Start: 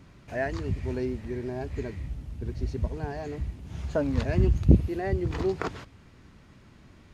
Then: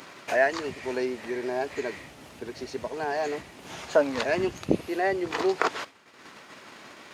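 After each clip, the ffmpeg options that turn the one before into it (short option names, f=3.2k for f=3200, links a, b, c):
-af "agate=range=-33dB:threshold=-41dB:ratio=3:detection=peak,acompressor=mode=upward:threshold=-27dB:ratio=2.5,highpass=520,volume=9dB"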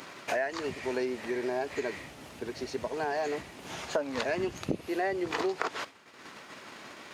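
-af "acompressor=threshold=-27dB:ratio=6"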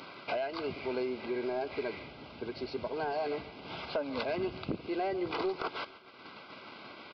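-af "aresample=11025,asoftclip=type=tanh:threshold=-23.5dB,aresample=44100,asuperstop=centerf=1800:order=12:qfactor=5.3,aecho=1:1:144|288|432|576:0.119|0.063|0.0334|0.0177,volume=-1dB"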